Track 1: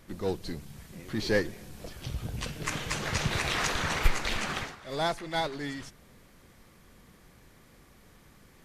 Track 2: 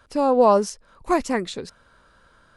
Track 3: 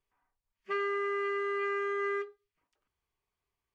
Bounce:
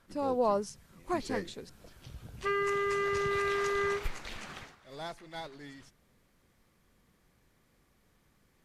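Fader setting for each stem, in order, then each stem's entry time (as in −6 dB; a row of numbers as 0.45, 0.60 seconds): −12.0, −12.5, +1.5 decibels; 0.00, 0.00, 1.75 seconds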